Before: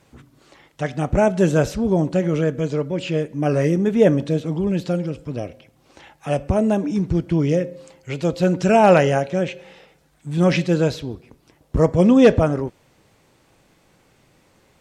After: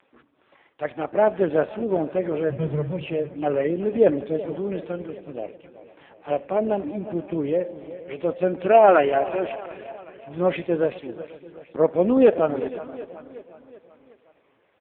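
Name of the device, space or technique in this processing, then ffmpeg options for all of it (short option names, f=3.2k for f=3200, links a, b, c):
satellite phone: -filter_complex "[0:a]asettb=1/sr,asplit=3[a][b][c];[a]atrim=end=2.494[d];[b]atrim=start=2.49:end=3.06,asetpts=PTS-STARTPTS,afade=t=in:d=0.004:c=qsin,afade=t=out:st=0.566:d=0.004:c=qsin,lowshelf=f=190:t=q:w=3:g=13.5[e];[c]atrim=start=3.056[f];[d][e]acrossfade=d=0.004:c1=hsin:c2=qsin[g];[g][f]acrossfade=d=0.004:c1=qsin:c2=hsin,asettb=1/sr,asplit=3[h][i][j];[h]atrim=end=4.884[k];[i]atrim=start=4.88:end=5.33,asetpts=PTS-STARTPTS,afade=t=in:d=0.004:c=qsin,afade=t=out:st=0.446:d=0.004:c=qsin,equalizer=f=610:w=1:g=-5.5[l];[j]atrim=start=5.326[m];[k][l]acrossfade=d=0.004:c1=hsin:c2=qsin[n];[n][m]acrossfade=d=0.004:c1=qsin:c2=hsin,asettb=1/sr,asplit=3[o][p][q];[o]atrim=end=8.674[r];[p]atrim=start=8.67:end=9.44,asetpts=PTS-STARTPTS,afade=t=in:d=0.004:c=qsin,afade=t=out:st=0.766:d=0.004:c=qsin,aecho=1:1:2.9:0.49,atrim=end_sample=33957[s];[q]atrim=start=9.436[t];[r][s]acrossfade=d=0.004:c1=hsin:c2=qsin[u];[u][t]acrossfade=d=0.004:c1=qsin:c2=hsin,highpass=360,lowpass=3.3k,aecho=1:1:371|742|1113|1484|1855:0.178|0.0925|0.0481|0.025|0.013,aecho=1:1:490:0.1" -ar 8000 -c:a libopencore_amrnb -b:a 4750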